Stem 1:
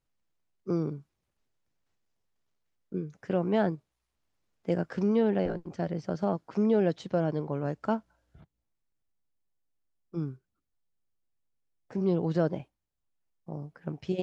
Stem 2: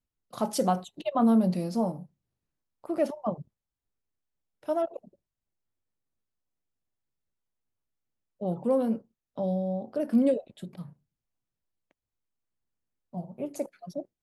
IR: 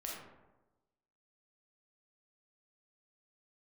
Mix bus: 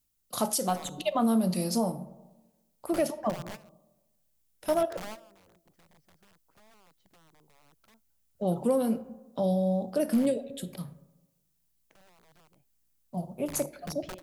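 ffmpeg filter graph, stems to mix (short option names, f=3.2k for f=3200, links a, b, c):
-filter_complex "[0:a]acompressor=threshold=-32dB:ratio=16,aeval=exprs='(mod(37.6*val(0)+1,2)-1)/37.6':c=same,aeval=exprs='val(0)+0.000562*(sin(2*PI*60*n/s)+sin(2*PI*2*60*n/s)/2+sin(2*PI*3*60*n/s)/3+sin(2*PI*4*60*n/s)/4+sin(2*PI*5*60*n/s)/5)':c=same,volume=-2.5dB[a];[1:a]crystalizer=i=4:c=0,volume=1dB,asplit=3[b][c][d];[c]volume=-12dB[e];[d]apad=whole_len=627483[f];[a][f]sidechaingate=range=-21dB:threshold=-53dB:ratio=16:detection=peak[g];[2:a]atrim=start_sample=2205[h];[e][h]afir=irnorm=-1:irlink=0[i];[g][b][i]amix=inputs=3:normalize=0,alimiter=limit=-17dB:level=0:latency=1:release=429"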